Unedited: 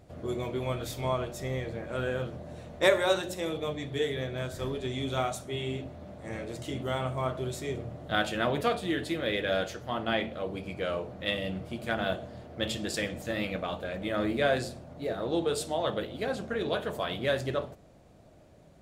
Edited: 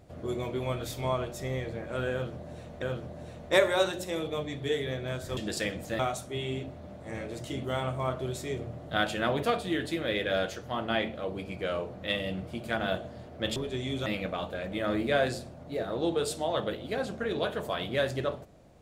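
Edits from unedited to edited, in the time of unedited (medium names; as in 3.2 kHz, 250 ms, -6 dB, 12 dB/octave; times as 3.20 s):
2.12–2.82 s: loop, 2 plays
4.67–5.17 s: swap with 12.74–13.36 s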